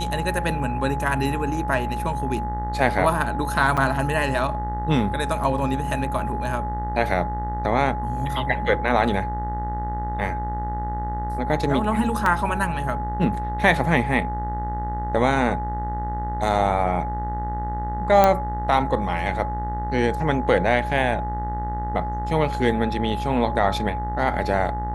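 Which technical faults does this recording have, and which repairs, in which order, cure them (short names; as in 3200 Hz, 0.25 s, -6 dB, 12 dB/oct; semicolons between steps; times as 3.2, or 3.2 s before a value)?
buzz 60 Hz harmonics 33 -29 dBFS
tone 840 Hz -28 dBFS
3.77–3.78 gap 5.8 ms
12.26 gap 2.4 ms
18.24 pop -4 dBFS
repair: de-click; de-hum 60 Hz, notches 33; notch 840 Hz, Q 30; interpolate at 3.77, 5.8 ms; interpolate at 12.26, 2.4 ms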